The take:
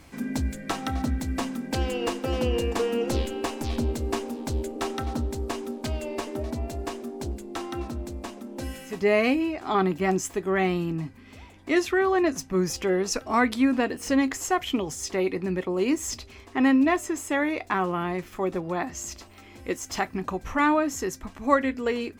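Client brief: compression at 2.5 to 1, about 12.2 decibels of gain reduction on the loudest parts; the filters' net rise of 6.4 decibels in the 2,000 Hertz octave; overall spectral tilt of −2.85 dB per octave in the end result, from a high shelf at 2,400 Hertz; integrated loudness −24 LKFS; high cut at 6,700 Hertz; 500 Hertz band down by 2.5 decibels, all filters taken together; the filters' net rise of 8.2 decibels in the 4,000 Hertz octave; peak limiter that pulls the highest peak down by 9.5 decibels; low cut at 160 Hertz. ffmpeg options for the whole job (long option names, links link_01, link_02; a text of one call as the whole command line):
ffmpeg -i in.wav -af "highpass=160,lowpass=6700,equalizer=frequency=500:width_type=o:gain=-4,equalizer=frequency=2000:width_type=o:gain=3.5,highshelf=frequency=2400:gain=7.5,equalizer=frequency=4000:width_type=o:gain=3.5,acompressor=threshold=-33dB:ratio=2.5,volume=11dB,alimiter=limit=-12.5dB:level=0:latency=1" out.wav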